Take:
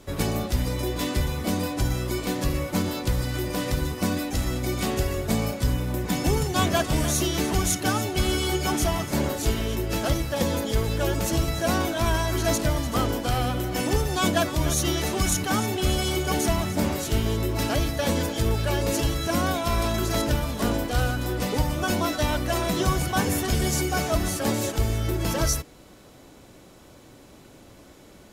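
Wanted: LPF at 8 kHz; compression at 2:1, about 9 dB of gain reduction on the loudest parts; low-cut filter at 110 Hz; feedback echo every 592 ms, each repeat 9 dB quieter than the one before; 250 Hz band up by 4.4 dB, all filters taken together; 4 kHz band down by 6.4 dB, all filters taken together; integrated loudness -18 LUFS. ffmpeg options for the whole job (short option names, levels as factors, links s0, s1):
-af "highpass=110,lowpass=8000,equalizer=f=250:t=o:g=6,equalizer=f=4000:t=o:g=-8.5,acompressor=threshold=0.02:ratio=2,aecho=1:1:592|1184|1776|2368:0.355|0.124|0.0435|0.0152,volume=4.73"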